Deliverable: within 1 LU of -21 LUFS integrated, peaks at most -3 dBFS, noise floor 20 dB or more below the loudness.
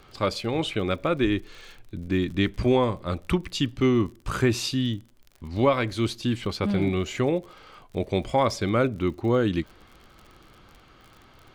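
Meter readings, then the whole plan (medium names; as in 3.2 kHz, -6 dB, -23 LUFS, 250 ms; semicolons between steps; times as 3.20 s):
tick rate 51 per s; loudness -25.5 LUFS; peak level -9.5 dBFS; loudness target -21.0 LUFS
-> de-click; trim +4.5 dB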